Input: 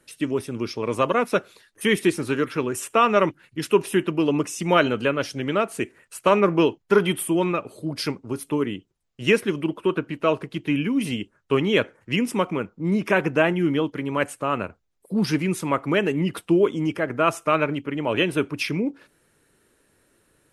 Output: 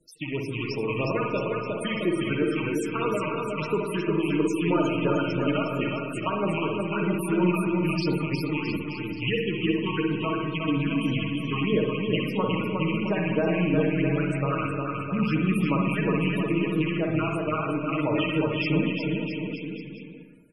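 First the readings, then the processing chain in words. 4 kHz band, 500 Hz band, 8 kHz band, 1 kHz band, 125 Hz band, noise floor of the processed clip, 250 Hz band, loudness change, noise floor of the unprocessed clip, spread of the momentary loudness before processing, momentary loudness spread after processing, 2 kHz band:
-3.5 dB, -5.0 dB, under -10 dB, -5.5 dB, +2.0 dB, -36 dBFS, -1.0 dB, -3.0 dB, -67 dBFS, 8 LU, 6 LU, -3.5 dB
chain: rattling part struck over -30 dBFS, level -18 dBFS; high shelf 6000 Hz +8.5 dB; comb 6.4 ms, depth 51%; compressor 6:1, threshold -19 dBFS, peak gain reduction 8.5 dB; phaser stages 6, 3 Hz, lowest notch 400–3000 Hz; bouncing-ball echo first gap 0.36 s, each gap 0.85×, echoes 5; spring tank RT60 1.1 s, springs 50/59 ms, chirp 30 ms, DRR 1 dB; loudest bins only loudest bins 64; air absorption 51 m; gain -3 dB

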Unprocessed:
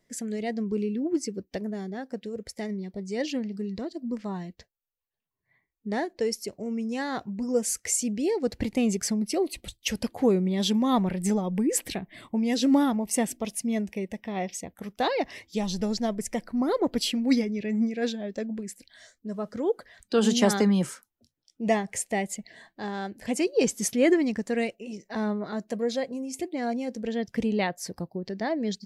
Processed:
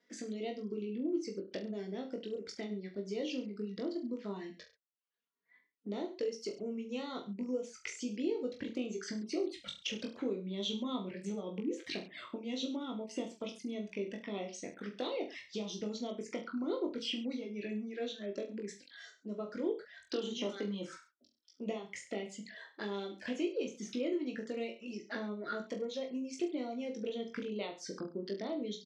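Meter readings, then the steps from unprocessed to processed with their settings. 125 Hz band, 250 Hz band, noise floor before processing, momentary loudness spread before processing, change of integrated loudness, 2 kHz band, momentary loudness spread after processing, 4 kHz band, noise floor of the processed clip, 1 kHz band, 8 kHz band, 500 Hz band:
-14.5 dB, -12.0 dB, -81 dBFS, 12 LU, -11.5 dB, -10.5 dB, 7 LU, -7.5 dB, -72 dBFS, -15.0 dB, -18.5 dB, -9.5 dB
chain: de-esser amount 60%; reverb removal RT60 0.53 s; compressor 6:1, threshold -34 dBFS, peak gain reduction 16.5 dB; envelope flanger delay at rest 4.3 ms, full sweep at -34 dBFS; speaker cabinet 280–5800 Hz, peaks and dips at 340 Hz +4 dB, 780 Hz -9 dB, 1400 Hz +8 dB, 3300 Hz +3 dB; on a send: reverse bouncing-ball echo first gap 20 ms, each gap 1.15×, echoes 5

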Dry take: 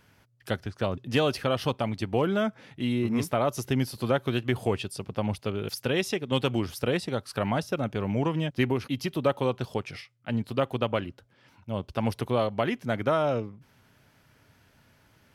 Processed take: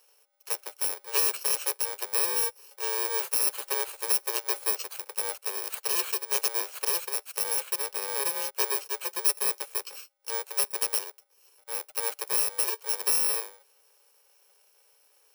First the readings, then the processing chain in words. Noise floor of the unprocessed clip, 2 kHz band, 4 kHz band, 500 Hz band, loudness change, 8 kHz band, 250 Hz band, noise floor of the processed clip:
-63 dBFS, -2.0 dB, +2.0 dB, -10.5 dB, +2.0 dB, +17.0 dB, under -25 dB, -65 dBFS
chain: FFT order left unsorted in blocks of 64 samples; steep high-pass 400 Hz 72 dB/oct

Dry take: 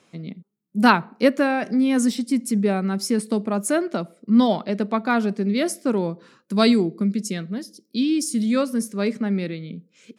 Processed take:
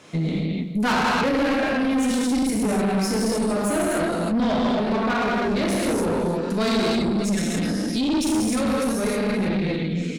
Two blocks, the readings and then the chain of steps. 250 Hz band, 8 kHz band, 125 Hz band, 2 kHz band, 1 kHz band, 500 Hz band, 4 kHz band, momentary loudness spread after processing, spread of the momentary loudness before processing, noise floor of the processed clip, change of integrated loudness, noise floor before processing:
-1.0 dB, +1.0 dB, +3.0 dB, +1.0 dB, 0.0 dB, +0.5 dB, +1.5 dB, 3 LU, 13 LU, -27 dBFS, -0.5 dB, -66 dBFS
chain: notches 60/120/180/240/300/360 Hz; on a send: echo 0.306 s -15.5 dB; on the sum: non-linear reverb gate 0.33 s flat, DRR -6 dB; in parallel at +0.5 dB: compressor, threshold -29 dBFS, peak gain reduction 20.5 dB; on the sum: high shelf 8700 Hz -4 dB; tube stage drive 16 dB, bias 0.45; limiter -22.5 dBFS, peak gain reduction 9 dB; gain +5.5 dB

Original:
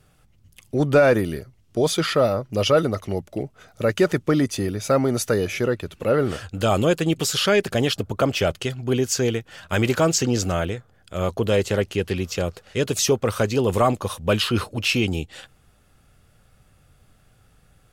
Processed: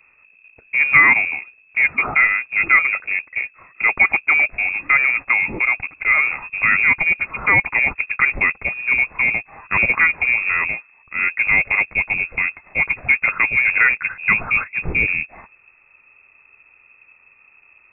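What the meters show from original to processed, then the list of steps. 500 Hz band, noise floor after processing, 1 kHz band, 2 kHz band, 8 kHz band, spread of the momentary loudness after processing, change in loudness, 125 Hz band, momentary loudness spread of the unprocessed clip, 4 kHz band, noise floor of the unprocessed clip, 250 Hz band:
-17.0 dB, -54 dBFS, +2.5 dB, +16.5 dB, under -40 dB, 8 LU, +6.0 dB, -12.5 dB, 9 LU, under -15 dB, -58 dBFS, -13.5 dB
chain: short-mantissa float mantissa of 2-bit; inverted band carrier 2600 Hz; gain +3.5 dB

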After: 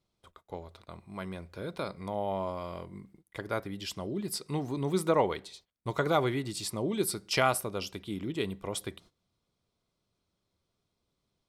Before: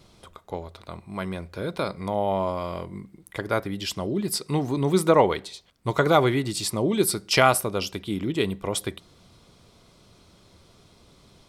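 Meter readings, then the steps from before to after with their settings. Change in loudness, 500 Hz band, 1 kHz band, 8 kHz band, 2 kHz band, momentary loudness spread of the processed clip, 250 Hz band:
-8.0 dB, -8.0 dB, -8.0 dB, -8.0 dB, -8.0 dB, 17 LU, -8.0 dB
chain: gate -47 dBFS, range -18 dB; gain -8 dB

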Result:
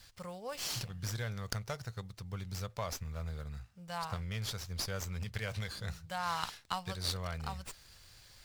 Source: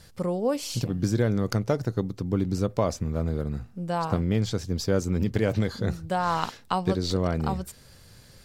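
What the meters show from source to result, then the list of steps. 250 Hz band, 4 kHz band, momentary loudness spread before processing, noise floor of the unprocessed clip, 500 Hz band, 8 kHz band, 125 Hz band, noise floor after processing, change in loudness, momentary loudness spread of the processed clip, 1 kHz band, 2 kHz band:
-20.5 dB, -3.0 dB, 5 LU, -52 dBFS, -17.5 dB, -3.5 dB, -12.5 dB, -59 dBFS, -12.0 dB, 10 LU, -10.0 dB, -5.5 dB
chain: passive tone stack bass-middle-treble 10-0-10; running maximum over 3 samples

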